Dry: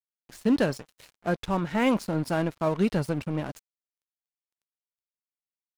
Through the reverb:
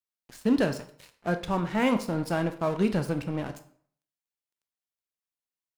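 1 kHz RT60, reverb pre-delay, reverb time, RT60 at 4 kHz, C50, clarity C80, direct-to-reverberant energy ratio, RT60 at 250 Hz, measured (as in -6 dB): 0.55 s, 18 ms, 0.55 s, 0.45 s, 12.5 dB, 16.5 dB, 8.5 dB, 0.55 s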